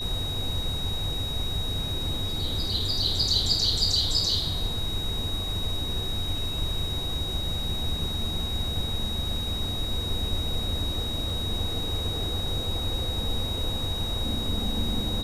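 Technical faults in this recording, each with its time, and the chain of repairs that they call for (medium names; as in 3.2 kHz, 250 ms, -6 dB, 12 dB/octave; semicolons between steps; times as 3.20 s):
whine 3.8 kHz -31 dBFS
11.30 s: dropout 2.8 ms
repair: band-stop 3.8 kHz, Q 30; interpolate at 11.30 s, 2.8 ms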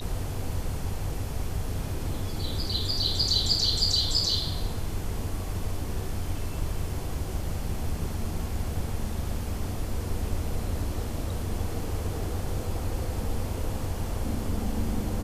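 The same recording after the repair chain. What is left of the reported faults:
nothing left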